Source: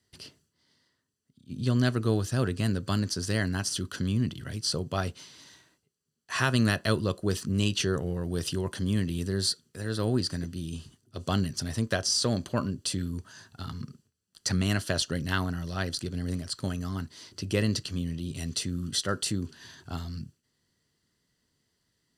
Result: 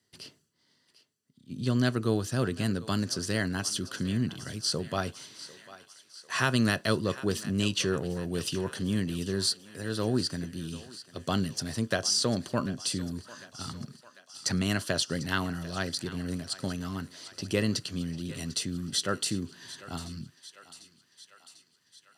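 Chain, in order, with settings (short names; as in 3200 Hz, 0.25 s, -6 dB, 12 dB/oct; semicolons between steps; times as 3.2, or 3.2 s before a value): HPF 120 Hz 12 dB/oct; on a send: thinning echo 0.747 s, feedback 66%, high-pass 590 Hz, level -15.5 dB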